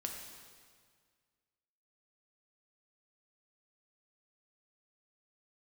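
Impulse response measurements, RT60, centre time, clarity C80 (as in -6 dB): 1.8 s, 57 ms, 5.0 dB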